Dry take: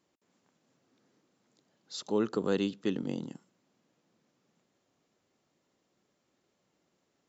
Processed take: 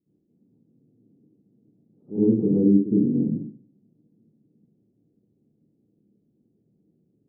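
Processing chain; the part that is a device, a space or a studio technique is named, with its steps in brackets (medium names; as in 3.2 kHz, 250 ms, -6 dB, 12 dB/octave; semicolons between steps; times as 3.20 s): next room (low-pass 350 Hz 24 dB/octave; reverberation RT60 0.45 s, pre-delay 57 ms, DRR -12 dB)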